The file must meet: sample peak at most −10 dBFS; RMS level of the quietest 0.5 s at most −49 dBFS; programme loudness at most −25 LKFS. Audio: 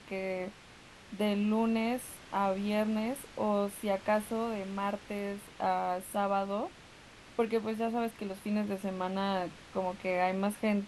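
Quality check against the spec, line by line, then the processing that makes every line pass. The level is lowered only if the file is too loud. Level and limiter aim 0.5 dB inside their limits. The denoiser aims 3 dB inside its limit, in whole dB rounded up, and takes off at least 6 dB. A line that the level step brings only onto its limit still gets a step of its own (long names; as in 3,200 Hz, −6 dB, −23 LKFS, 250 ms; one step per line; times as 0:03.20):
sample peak −18.5 dBFS: in spec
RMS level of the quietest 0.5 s −54 dBFS: in spec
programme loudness −33.5 LKFS: in spec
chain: no processing needed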